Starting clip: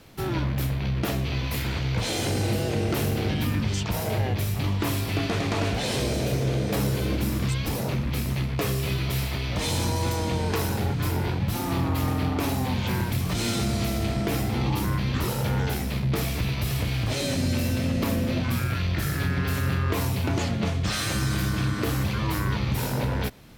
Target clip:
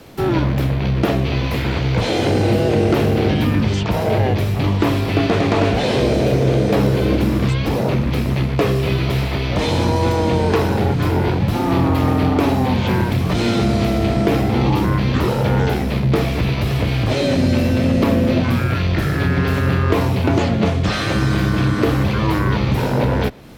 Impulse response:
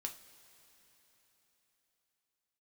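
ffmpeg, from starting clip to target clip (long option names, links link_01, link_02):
-filter_complex "[0:a]equalizer=frequency=440:width=0.55:gain=6,acrossover=split=100|4600[link_01][link_02][link_03];[link_03]acompressor=threshold=-50dB:ratio=6[link_04];[link_01][link_02][link_04]amix=inputs=3:normalize=0,volume=6.5dB"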